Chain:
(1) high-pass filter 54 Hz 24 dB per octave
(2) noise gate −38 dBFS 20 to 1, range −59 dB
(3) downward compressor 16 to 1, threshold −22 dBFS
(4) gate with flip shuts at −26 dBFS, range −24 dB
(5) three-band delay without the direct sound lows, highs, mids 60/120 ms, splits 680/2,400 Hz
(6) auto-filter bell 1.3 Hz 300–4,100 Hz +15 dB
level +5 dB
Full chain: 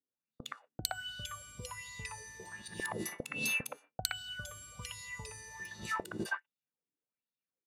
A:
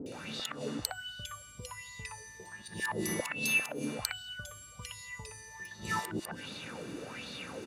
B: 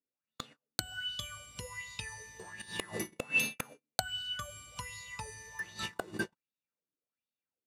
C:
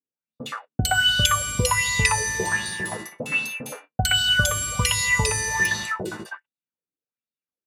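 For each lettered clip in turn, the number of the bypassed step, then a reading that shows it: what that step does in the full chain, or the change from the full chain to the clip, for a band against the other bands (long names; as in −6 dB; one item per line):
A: 2, change in momentary loudness spread +3 LU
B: 5, change in momentary loudness spread +3 LU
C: 4, change in momentary loudness spread +4 LU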